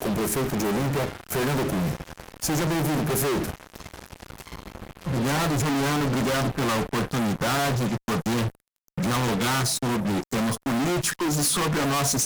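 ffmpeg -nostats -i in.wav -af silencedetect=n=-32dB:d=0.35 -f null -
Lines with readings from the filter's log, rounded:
silence_start: 8.50
silence_end: 8.98 | silence_duration: 0.48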